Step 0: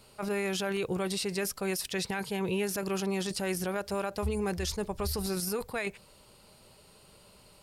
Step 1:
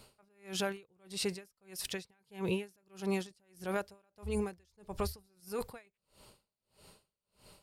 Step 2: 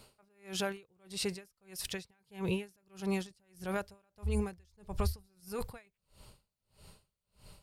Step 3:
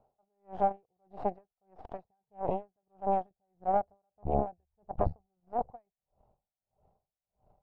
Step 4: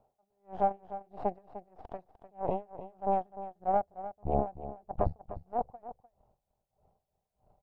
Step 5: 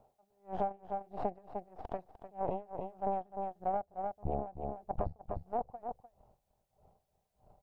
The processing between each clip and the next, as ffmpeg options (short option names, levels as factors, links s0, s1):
-af "aeval=exprs='val(0)*pow(10,-39*(0.5-0.5*cos(2*PI*1.6*n/s))/20)':c=same"
-af "asubboost=boost=3:cutoff=160"
-af "aeval=exprs='0.126*(cos(1*acos(clip(val(0)/0.126,-1,1)))-cos(1*PI/2))+0.00794*(cos(3*acos(clip(val(0)/0.126,-1,1)))-cos(3*PI/2))+0.0282*(cos(4*acos(clip(val(0)/0.126,-1,1)))-cos(4*PI/2))+0.0112*(cos(7*acos(clip(val(0)/0.126,-1,1)))-cos(7*PI/2))+0.00355*(cos(8*acos(clip(val(0)/0.126,-1,1)))-cos(8*PI/2))':c=same,lowpass=f=740:t=q:w=8"
-af "aecho=1:1:301:0.224"
-af "acompressor=threshold=0.0178:ratio=6,volume=1.58"